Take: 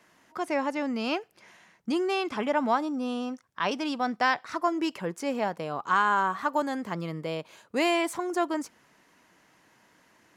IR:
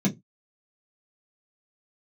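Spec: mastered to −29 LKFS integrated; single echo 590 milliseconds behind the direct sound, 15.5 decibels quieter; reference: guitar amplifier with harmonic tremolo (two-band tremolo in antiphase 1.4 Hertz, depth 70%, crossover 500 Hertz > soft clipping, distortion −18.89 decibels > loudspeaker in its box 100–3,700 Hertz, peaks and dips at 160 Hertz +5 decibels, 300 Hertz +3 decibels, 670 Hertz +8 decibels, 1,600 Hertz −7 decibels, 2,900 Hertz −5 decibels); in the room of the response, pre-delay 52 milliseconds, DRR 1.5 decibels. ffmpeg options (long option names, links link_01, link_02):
-filter_complex "[0:a]aecho=1:1:590:0.168,asplit=2[link_01][link_02];[1:a]atrim=start_sample=2205,adelay=52[link_03];[link_02][link_03]afir=irnorm=-1:irlink=0,volume=-9.5dB[link_04];[link_01][link_04]amix=inputs=2:normalize=0,acrossover=split=500[link_05][link_06];[link_05]aeval=exprs='val(0)*(1-0.7/2+0.7/2*cos(2*PI*1.4*n/s))':channel_layout=same[link_07];[link_06]aeval=exprs='val(0)*(1-0.7/2-0.7/2*cos(2*PI*1.4*n/s))':channel_layout=same[link_08];[link_07][link_08]amix=inputs=2:normalize=0,asoftclip=threshold=-13dB,highpass=100,equalizer=frequency=160:width_type=q:width=4:gain=5,equalizer=frequency=300:width_type=q:width=4:gain=3,equalizer=frequency=670:width_type=q:width=4:gain=8,equalizer=frequency=1600:width_type=q:width=4:gain=-7,equalizer=frequency=2900:width_type=q:width=4:gain=-5,lowpass=frequency=3700:width=0.5412,lowpass=frequency=3700:width=1.3066,volume=-6.5dB"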